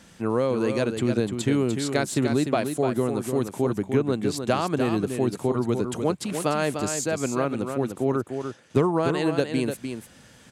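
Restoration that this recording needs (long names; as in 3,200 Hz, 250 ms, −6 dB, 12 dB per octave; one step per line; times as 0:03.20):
clipped peaks rebuilt −9.5 dBFS
echo removal 298 ms −7 dB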